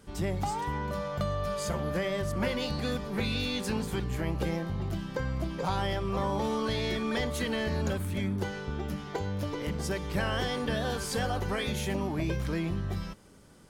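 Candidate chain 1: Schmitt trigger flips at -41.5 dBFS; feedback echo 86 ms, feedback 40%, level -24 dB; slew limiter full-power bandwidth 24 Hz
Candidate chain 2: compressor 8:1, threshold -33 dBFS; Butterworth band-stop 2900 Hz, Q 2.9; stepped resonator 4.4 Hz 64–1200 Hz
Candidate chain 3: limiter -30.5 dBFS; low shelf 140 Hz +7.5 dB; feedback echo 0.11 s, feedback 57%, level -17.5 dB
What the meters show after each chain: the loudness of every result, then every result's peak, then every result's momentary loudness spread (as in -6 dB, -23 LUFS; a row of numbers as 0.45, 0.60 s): -33.5, -48.5, -36.0 LUFS; -27.5, -29.5, -24.5 dBFS; 1, 11, 2 LU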